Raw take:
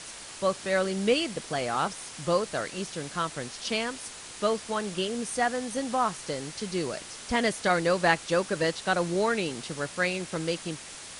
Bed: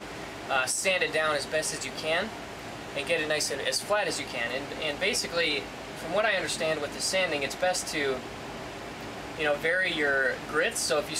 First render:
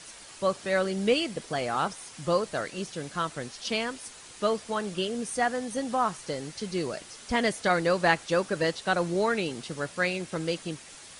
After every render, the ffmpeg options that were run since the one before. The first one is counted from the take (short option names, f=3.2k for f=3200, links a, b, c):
-af "afftdn=nr=6:nf=-43"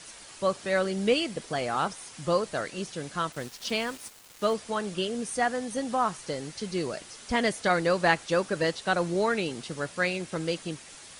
-filter_complex "[0:a]asettb=1/sr,asplit=3[a][b][c];[a]atrim=end=3.324[d];[b]atrim=start=3.32:end=4.54,asetpts=PTS-STARTPTS,afade=t=in:d=0.004:c=qsin,afade=t=out:st=1.216:d=0.004:c=qsin,aeval=exprs='val(0)*gte(abs(val(0)),0.0075)':c=same[e];[c]atrim=start=4.536[f];[d][e]acrossfade=d=0.004:c1=hsin:c2=qsin[g];[g][f]acrossfade=d=0.004:c1=qsin:c2=hsin"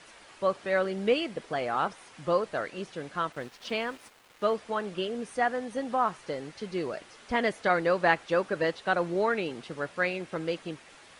-af "bass=f=250:g=-6,treble=f=4k:g=-14"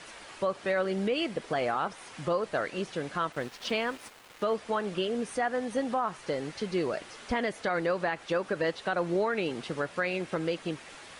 -filter_complex "[0:a]asplit=2[a][b];[b]acompressor=threshold=-36dB:ratio=6,volume=-1.5dB[c];[a][c]amix=inputs=2:normalize=0,alimiter=limit=-19.5dB:level=0:latency=1:release=94"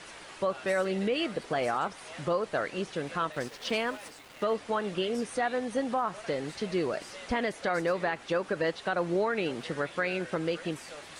-filter_complex "[1:a]volume=-20.5dB[a];[0:a][a]amix=inputs=2:normalize=0"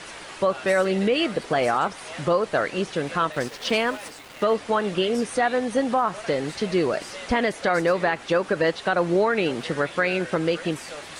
-af "volume=7.5dB"